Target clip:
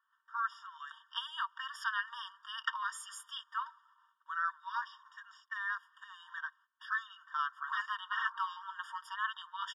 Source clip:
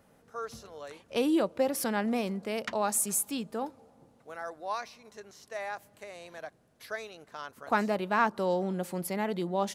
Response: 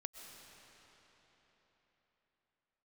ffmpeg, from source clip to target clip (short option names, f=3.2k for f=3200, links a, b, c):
-filter_complex "[0:a]lowpass=2.4k,agate=range=-16dB:threshold=-60dB:ratio=16:detection=peak,asettb=1/sr,asplit=3[a][b][c];[a]atrim=end=0.774[d];[b]atrim=start=0.77:end=3.54,asetpts=PTS-STARTPTS,afade=t=in:d=0.004:c=qsin,afade=t=out:st=2.766:d=0.004:c=qsin,highpass=f=1.4k:p=1[e];[c]atrim=start=3.536[f];[d][e]acrossfade=d=0.004:c1=hsin:c2=qsin[g];[g][f]acrossfade=d=0.004:c1=qsin:c2=hsin,afftfilt=real='re*lt(hypot(re,im),0.112)':imag='im*lt(hypot(re,im),0.112)':win_size=1024:overlap=0.75,aecho=1:1:4.5:0.47,afftfilt=real='re*eq(mod(floor(b*sr/1024/940),2),1)':imag='im*eq(mod(floor(b*sr/1024/940),2),1)':win_size=1024:overlap=0.75,volume=8.5dB"